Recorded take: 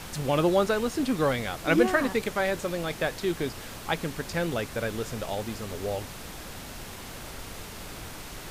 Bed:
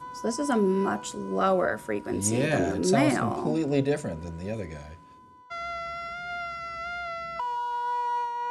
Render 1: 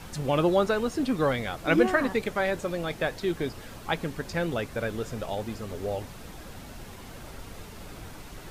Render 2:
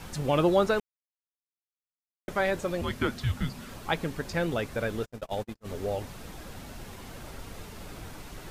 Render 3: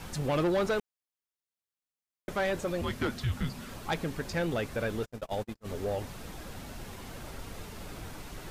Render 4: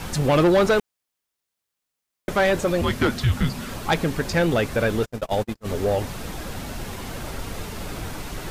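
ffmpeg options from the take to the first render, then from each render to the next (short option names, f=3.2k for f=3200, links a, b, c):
-af "afftdn=nr=7:nf=-41"
-filter_complex "[0:a]asettb=1/sr,asplit=3[a][b][c];[a]atrim=end=2.814[d];[b]atrim=start=2.81:end=3.69,asetpts=PTS-STARTPTS,afade=t=in:d=0.004:c=qsin,afade=t=out:st=0.876:d=0.004:c=qsin,afreqshift=-260[e];[c]atrim=start=3.686[f];[d][e]acrossfade=d=0.004:c1=hsin:c2=qsin[g];[g][f]acrossfade=d=0.004:c1=qsin:c2=hsin,asplit=3[h][i][j];[h]afade=t=out:st=5.04:d=0.02[k];[i]agate=range=-49dB:threshold=-33dB:ratio=16:release=100:detection=peak,afade=t=in:st=5.04:d=0.02,afade=t=out:st=5.64:d=0.02[l];[j]afade=t=in:st=5.64:d=0.02[m];[k][l][m]amix=inputs=3:normalize=0,asplit=3[n][o][p];[n]atrim=end=0.8,asetpts=PTS-STARTPTS,afade=t=out:st=0.796:d=0.004:c=hsin[q];[o]atrim=start=0.8:end=2.28,asetpts=PTS-STARTPTS,volume=0[r];[p]atrim=start=2.28,asetpts=PTS-STARTPTS,afade=t=in:d=0.004:c=hsin[s];[q][r][s]concat=n=3:v=0:a=1"
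-af "asoftclip=type=tanh:threshold=-23dB"
-af "volume=10.5dB"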